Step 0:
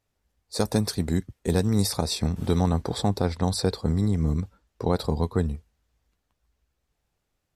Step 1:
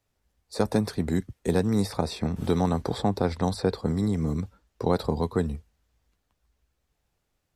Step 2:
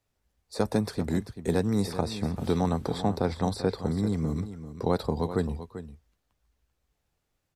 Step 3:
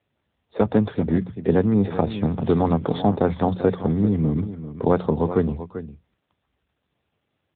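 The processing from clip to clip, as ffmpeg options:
ffmpeg -i in.wav -filter_complex "[0:a]acrossover=split=150|1400|2800[link_01][link_02][link_03][link_04];[link_01]alimiter=level_in=6.5dB:limit=-24dB:level=0:latency=1,volume=-6.5dB[link_05];[link_04]acompressor=threshold=-44dB:ratio=4[link_06];[link_05][link_02][link_03][link_06]amix=inputs=4:normalize=0,volume=1dB" out.wav
ffmpeg -i in.wav -af "aecho=1:1:390:0.251,volume=-2dB" out.wav
ffmpeg -i in.wav -af "bandreject=frequency=60:width_type=h:width=6,bandreject=frequency=120:width_type=h:width=6,bandreject=frequency=180:width_type=h:width=6,volume=8dB" -ar 8000 -c:a libopencore_amrnb -b:a 7950 out.amr

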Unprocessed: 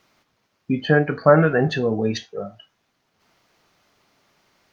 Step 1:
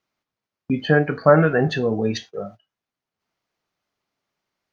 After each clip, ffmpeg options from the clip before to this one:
ffmpeg -i in.wav -af "agate=range=-18dB:threshold=-39dB:ratio=16:detection=peak" out.wav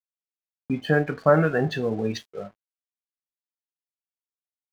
ffmpeg -i in.wav -af "aeval=exprs='sgn(val(0))*max(abs(val(0))-0.00596,0)':channel_layout=same,volume=-4dB" out.wav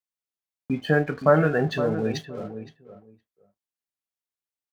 ffmpeg -i in.wav -filter_complex "[0:a]asplit=2[link_01][link_02];[link_02]adelay=516,lowpass=frequency=1300:poles=1,volume=-10dB,asplit=2[link_03][link_04];[link_04]adelay=516,lowpass=frequency=1300:poles=1,volume=0.16[link_05];[link_01][link_03][link_05]amix=inputs=3:normalize=0" out.wav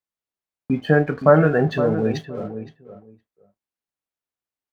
ffmpeg -i in.wav -af "highshelf=frequency=2500:gain=-9,volume=5dB" out.wav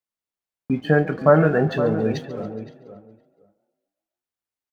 ffmpeg -i in.wav -filter_complex "[0:a]asplit=6[link_01][link_02][link_03][link_04][link_05][link_06];[link_02]adelay=140,afreqshift=31,volume=-18dB[link_07];[link_03]adelay=280,afreqshift=62,volume=-22.6dB[link_08];[link_04]adelay=420,afreqshift=93,volume=-27.2dB[link_09];[link_05]adelay=560,afreqshift=124,volume=-31.7dB[link_10];[link_06]adelay=700,afreqshift=155,volume=-36.3dB[link_11];[link_01][link_07][link_08][link_09][link_10][link_11]amix=inputs=6:normalize=0,volume=-1dB" out.wav

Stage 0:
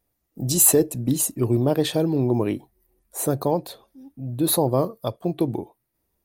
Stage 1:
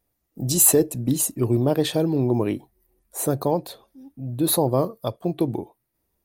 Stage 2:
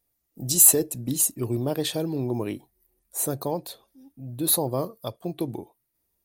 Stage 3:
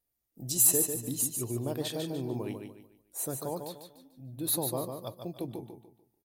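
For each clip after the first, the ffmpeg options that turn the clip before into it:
ffmpeg -i in.wav -af anull out.wav
ffmpeg -i in.wav -af "highshelf=frequency=2900:gain=8.5,volume=-6.5dB" out.wav
ffmpeg -i in.wav -af "aecho=1:1:147|294|441|588:0.501|0.165|0.0546|0.018,volume=-8dB" out.wav

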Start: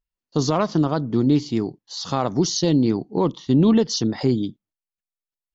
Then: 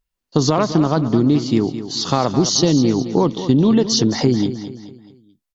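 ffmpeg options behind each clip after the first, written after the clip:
ffmpeg -i in.wav -filter_complex "[0:a]acompressor=threshold=-19dB:ratio=6,asplit=2[link_01][link_02];[link_02]aecho=0:1:215|430|645|860:0.266|0.112|0.0469|0.0197[link_03];[link_01][link_03]amix=inputs=2:normalize=0,volume=8dB" out.wav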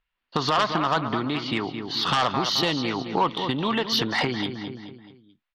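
ffmpeg -i in.wav -filter_complex "[0:a]lowpass=frequency=3200:width=0.5412,lowpass=frequency=3200:width=1.3066,acrossover=split=890[link_01][link_02];[link_01]acompressor=threshold=-22dB:ratio=6[link_03];[link_02]aeval=exprs='0.251*sin(PI/2*2.82*val(0)/0.251)':channel_layout=same[link_04];[link_03][link_04]amix=inputs=2:normalize=0,volume=-4.5dB" out.wav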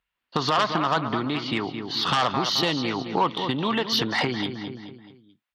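ffmpeg -i in.wav -af "highpass=52" out.wav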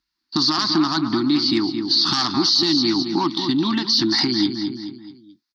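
ffmpeg -i in.wav -af "aexciter=amount=11.9:drive=6.5:freq=4600,firequalizer=gain_entry='entry(140,0);entry(330,14);entry(470,-24);entry(810,-2);entry(1500,0);entry(2600,-3);entry(4600,4);entry(7600,-26)':delay=0.05:min_phase=1,alimiter=limit=-9.5dB:level=0:latency=1:release=21" out.wav

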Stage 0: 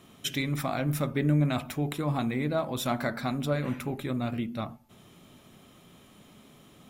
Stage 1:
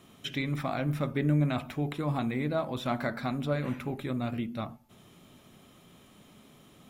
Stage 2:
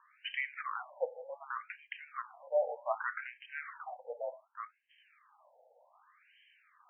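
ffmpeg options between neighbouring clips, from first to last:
ffmpeg -i in.wav -filter_complex "[0:a]acrossover=split=4100[link_01][link_02];[link_02]acompressor=threshold=-52dB:ratio=4:attack=1:release=60[link_03];[link_01][link_03]amix=inputs=2:normalize=0,volume=-1.5dB" out.wav
ffmpeg -i in.wav -af "highpass=frequency=160:width_type=q:width=0.5412,highpass=frequency=160:width_type=q:width=1.307,lowpass=frequency=3500:width_type=q:width=0.5176,lowpass=frequency=3500:width_type=q:width=0.7071,lowpass=frequency=3500:width_type=q:width=1.932,afreqshift=-51,afftfilt=real='re*between(b*sr/1024,620*pow(2300/620,0.5+0.5*sin(2*PI*0.66*pts/sr))/1.41,620*pow(2300/620,0.5+0.5*sin(2*PI*0.66*pts/sr))*1.41)':imag='im*between(b*sr/1024,620*pow(2300/620,0.5+0.5*sin(2*PI*0.66*pts/sr))/1.41,620*pow(2300/620,0.5+0.5*sin(2*PI*0.66*pts/sr))*1.41)':win_size=1024:overlap=0.75,volume=2dB" out.wav

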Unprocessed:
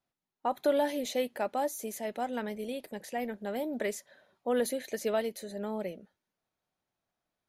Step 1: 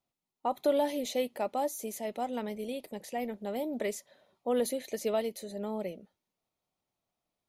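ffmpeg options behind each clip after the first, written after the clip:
ffmpeg -i in.wav -af "equalizer=frequency=1600:width_type=o:width=0.32:gain=-11.5" out.wav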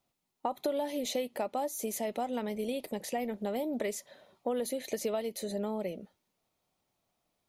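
ffmpeg -i in.wav -af "acompressor=threshold=-37dB:ratio=5,volume=6.5dB" out.wav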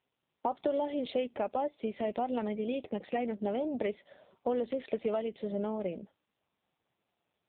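ffmpeg -i in.wav -af "volume=2dB" -ar 8000 -c:a libopencore_amrnb -b:a 5900 out.amr

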